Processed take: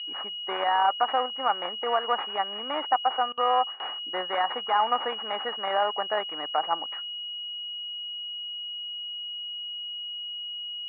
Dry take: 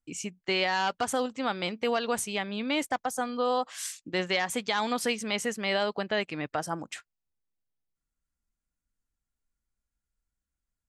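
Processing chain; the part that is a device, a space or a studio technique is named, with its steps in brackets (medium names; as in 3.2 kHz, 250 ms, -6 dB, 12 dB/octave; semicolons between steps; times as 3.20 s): toy sound module (decimation joined by straight lines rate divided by 4×; class-D stage that switches slowly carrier 2.9 kHz; cabinet simulation 650–3600 Hz, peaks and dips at 800 Hz +7 dB, 1.2 kHz +7 dB, 1.9 kHz +5 dB); 3.32–3.82 s: gate with hold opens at -30 dBFS; trim +4 dB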